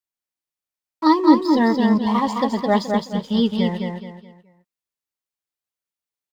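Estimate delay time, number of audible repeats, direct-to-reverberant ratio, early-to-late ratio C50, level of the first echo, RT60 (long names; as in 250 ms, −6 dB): 213 ms, 4, no reverb audible, no reverb audible, −4.0 dB, no reverb audible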